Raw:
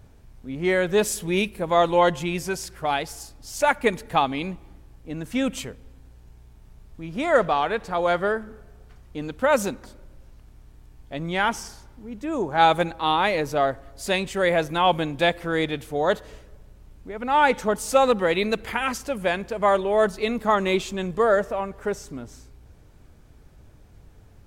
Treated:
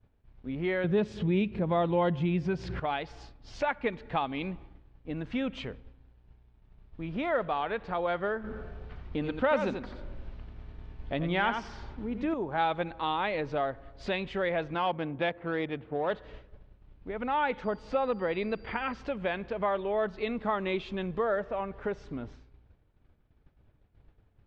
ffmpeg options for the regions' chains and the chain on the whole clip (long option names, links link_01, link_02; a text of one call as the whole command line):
ffmpeg -i in.wav -filter_complex "[0:a]asettb=1/sr,asplit=3[link_01][link_02][link_03];[link_01]atrim=end=0.844[link_04];[link_02]atrim=start=0.84:end=2.8,asetpts=PTS-STARTPTS,afade=type=in:duration=0.004:curve=qsin,afade=type=out:start_time=1.956:duration=0.004:curve=qsin,highpass=54,equalizer=frequency=140:width=0.45:gain=13,acompressor=mode=upward:threshold=-19dB:ratio=2.5:attack=3.2:release=140:knee=2.83:detection=peak[link_05];[link_03]atrim=start=2.796[link_06];[link_04][link_05]acrossfade=duration=0.004:curve1=hsin:curve2=qsin[link_07];[link_07][link_06]acrossfade=duration=0.004:curve1=qsin:curve2=hsin,asettb=1/sr,asplit=3[link_08][link_09][link_10];[link_08]atrim=end=8.444[link_11];[link_09]atrim=start=8.44:end=12.34,asetpts=PTS-STARTPTS,afade=type=in:duration=0.004:curve=qsin,afade=type=out:start_time=3.896:duration=0.004:curve=qsin,acontrast=65,aecho=1:1:88:0.398,atrim=end_sample=171990[link_12];[link_10]atrim=start=12.336[link_13];[link_11][link_12]acrossfade=duration=0.004:curve1=hsin:curve2=qsin[link_14];[link_14][link_13]acrossfade=duration=0.004:curve1=qsin:curve2=hsin,asettb=1/sr,asplit=3[link_15][link_16][link_17];[link_15]atrim=end=14.744[link_18];[link_16]atrim=start=14.74:end=16.11,asetpts=PTS-STARTPTS,afade=type=in:duration=0.004:curve=qsin,afade=type=out:start_time=1.366:duration=0.004:curve=qsin,adynamicsmooth=sensitivity=2:basefreq=1500,highpass=100,lowpass=4900[link_19];[link_17]atrim=start=16.106[link_20];[link_18][link_19]acrossfade=duration=0.004:curve1=hsin:curve2=qsin[link_21];[link_21][link_20]acrossfade=duration=0.004:curve1=qsin:curve2=hsin,asettb=1/sr,asplit=3[link_22][link_23][link_24];[link_22]atrim=end=17.644[link_25];[link_23]atrim=start=17.64:end=18.98,asetpts=PTS-STARTPTS,afade=type=in:duration=0.004:curve=qsin,afade=type=out:start_time=1.336:duration=0.004:curve=qsin,highshelf=frequency=3200:gain=-9.5,aeval=exprs='val(0)+0.00398*sin(2*PI*4700*n/s)':channel_layout=same[link_26];[link_24]atrim=start=18.976[link_27];[link_25][link_26]acrossfade=duration=0.004:curve1=hsin:curve2=qsin[link_28];[link_28][link_27]acrossfade=duration=0.004:curve1=qsin:curve2=hsin,agate=range=-33dB:threshold=-39dB:ratio=3:detection=peak,lowpass=frequency=3700:width=0.5412,lowpass=frequency=3700:width=1.3066,acompressor=threshold=-34dB:ratio=2" out.wav